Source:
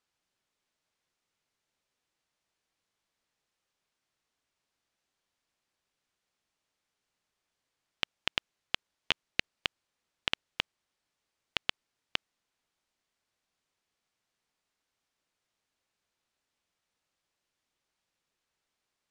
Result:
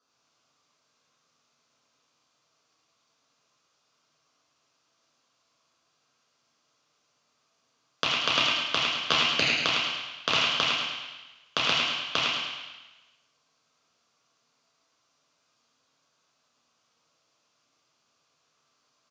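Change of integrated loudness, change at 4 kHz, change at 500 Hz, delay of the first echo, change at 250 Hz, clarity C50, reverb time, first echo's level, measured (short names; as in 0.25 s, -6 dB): +10.5 dB, +11.5 dB, +13.5 dB, 0.106 s, +12.5 dB, -2.0 dB, 1.1 s, -4.5 dB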